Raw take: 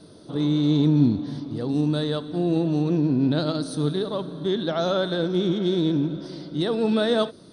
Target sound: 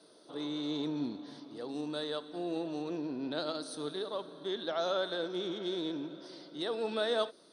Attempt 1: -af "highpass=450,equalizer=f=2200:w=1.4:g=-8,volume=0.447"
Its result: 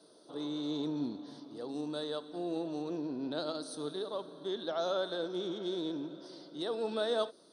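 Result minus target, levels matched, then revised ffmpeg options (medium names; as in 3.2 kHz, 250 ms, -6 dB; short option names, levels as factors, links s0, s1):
2 kHz band -3.5 dB
-af "highpass=450,volume=0.447"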